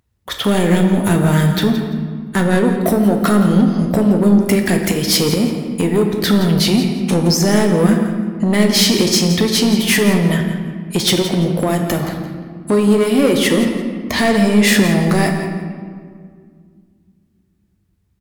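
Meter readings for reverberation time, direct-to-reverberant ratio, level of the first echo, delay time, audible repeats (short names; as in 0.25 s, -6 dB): 2.1 s, 2.5 dB, -12.5 dB, 0.17 s, 1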